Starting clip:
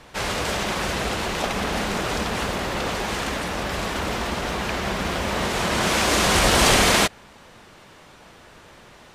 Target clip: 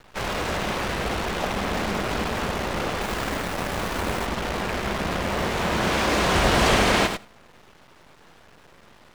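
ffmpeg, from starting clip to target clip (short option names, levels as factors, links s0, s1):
-filter_complex "[0:a]asplit=2[s0][s1];[s1]aecho=0:1:102:0.398[s2];[s0][s2]amix=inputs=2:normalize=0,acrusher=bits=5:dc=4:mix=0:aa=0.000001,lowpass=f=2600:p=1,asplit=2[s3][s4];[s4]aecho=0:1:84:0.0891[s5];[s3][s5]amix=inputs=2:normalize=0,asettb=1/sr,asplit=3[s6][s7][s8];[s6]atrim=end=3.014[s9];[s7]atrim=start=3.01:end=4.26,asetpts=PTS-STARTPTS,afade=t=in:d=0.004:c=qsin,afade=t=out:st=1.246:d=0.004:c=qsin,acrusher=bits=3:mode=log:mix=0:aa=0.000001[s10];[s8]atrim=start=4.256[s11];[s9][s10]acrossfade=d=0.004:c1=hsin:c2=qsin[s12];[s12][s11]acrossfade=d=0.004:c1=qsin:c2=hsin,volume=0.891"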